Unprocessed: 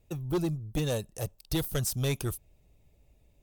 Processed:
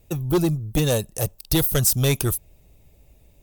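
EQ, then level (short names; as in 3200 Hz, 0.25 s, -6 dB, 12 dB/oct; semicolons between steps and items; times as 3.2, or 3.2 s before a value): high shelf 10000 Hz +9 dB; +9.0 dB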